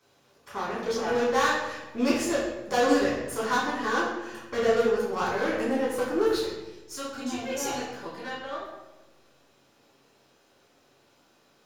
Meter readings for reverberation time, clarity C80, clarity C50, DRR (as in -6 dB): 1.1 s, 4.5 dB, 2.0 dB, -7.0 dB